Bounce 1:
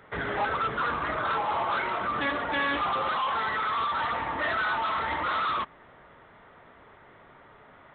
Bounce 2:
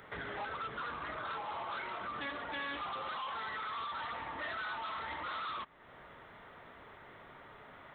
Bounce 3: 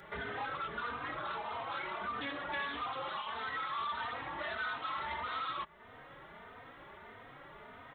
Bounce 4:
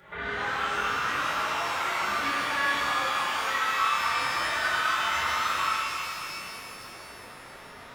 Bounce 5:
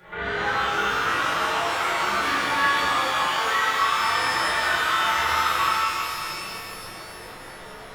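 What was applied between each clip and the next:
compressor 2:1, threshold -48 dBFS, peak gain reduction 13 dB; high shelf 3500 Hz +9 dB; gain -1.5 dB
endless flanger 3.1 ms +1.6 Hz; gain +4.5 dB
dynamic EQ 1700 Hz, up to +6 dB, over -51 dBFS, Q 0.79; shimmer reverb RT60 3.1 s, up +12 st, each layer -8 dB, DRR -9 dB; gain -3 dB
shoebox room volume 35 m³, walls mixed, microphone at 0.65 m; gain +1.5 dB

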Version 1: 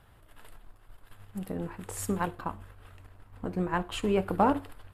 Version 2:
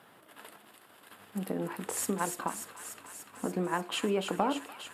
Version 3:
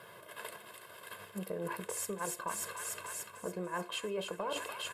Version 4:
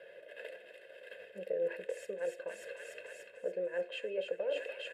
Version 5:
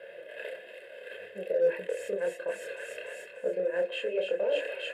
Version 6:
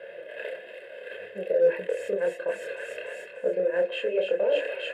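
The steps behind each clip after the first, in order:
HPF 190 Hz 24 dB/oct; compressor 2.5:1, threshold -36 dBFS, peak gain reduction 12 dB; on a send: thin delay 0.292 s, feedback 75%, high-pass 2200 Hz, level -5 dB; on the sum: gain +5.5 dB
comb 1.9 ms, depth 87%; reverse; compressor 5:1, threshold -39 dBFS, peak gain reduction 15.5 dB; reverse; gain +3 dB
vowel filter e; gain +10 dB
chorus voices 2, 1.2 Hz, delay 28 ms, depth 3 ms; bell 5600 Hz -4.5 dB 0.79 oct; in parallel at -10 dB: hard clip -35 dBFS, distortion -12 dB; on the sum: gain +8 dB
high shelf 4800 Hz -8.5 dB; gain +4.5 dB

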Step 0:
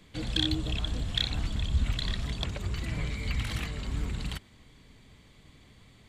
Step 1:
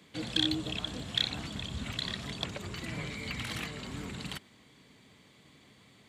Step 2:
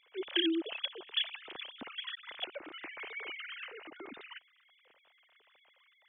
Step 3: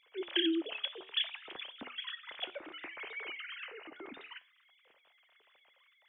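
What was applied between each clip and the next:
HPF 160 Hz 12 dB/oct
sine-wave speech; gain -3 dB
flange 0.61 Hz, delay 8.6 ms, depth 4.5 ms, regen -80%; gain +4 dB

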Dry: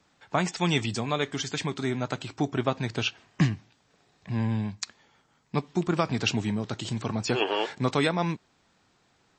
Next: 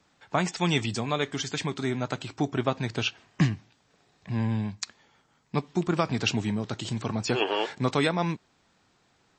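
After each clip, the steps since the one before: nothing audible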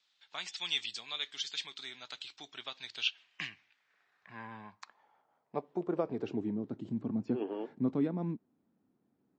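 band-pass sweep 3700 Hz -> 250 Hz, 2.94–6.85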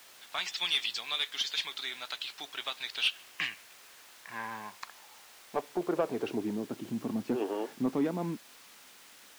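added noise white -59 dBFS; overdrive pedal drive 15 dB, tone 3800 Hz, clips at -17 dBFS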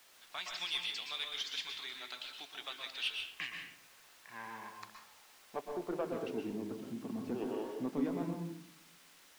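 reverb RT60 0.55 s, pre-delay 0.113 s, DRR 3 dB; gain -8 dB

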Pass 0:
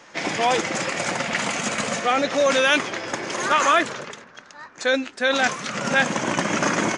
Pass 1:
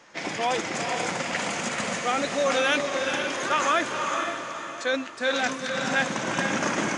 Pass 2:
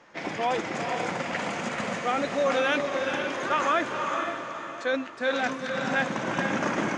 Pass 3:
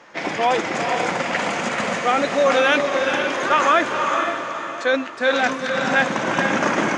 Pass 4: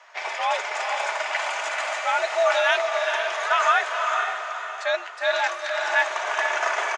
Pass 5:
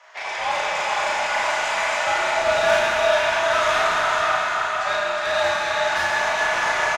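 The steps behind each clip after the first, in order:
diffused feedback echo 0.471 s, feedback 42%, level -4 dB; gain -5.5 dB
LPF 2100 Hz 6 dB/oct
low shelf 200 Hz -7 dB; gain +8.5 dB
HPF 530 Hz 24 dB/oct; comb 3.6 ms, depth 31%; frequency shift +85 Hz; gain -3.5 dB
soft clip -21.5 dBFS, distortion -11 dB; doubler 35 ms -3 dB; plate-style reverb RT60 4.8 s, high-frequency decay 0.85×, DRR -4.5 dB; gain -1 dB

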